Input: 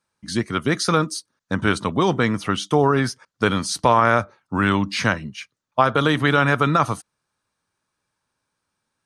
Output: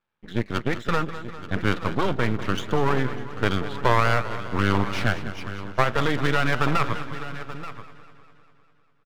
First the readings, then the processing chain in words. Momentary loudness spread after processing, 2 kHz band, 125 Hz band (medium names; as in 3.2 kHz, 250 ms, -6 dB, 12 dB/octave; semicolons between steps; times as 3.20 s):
12 LU, -3.5 dB, -2.5 dB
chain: resampled via 8 kHz; delay 881 ms -14 dB; half-wave rectifier; modulated delay 200 ms, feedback 62%, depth 87 cents, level -13 dB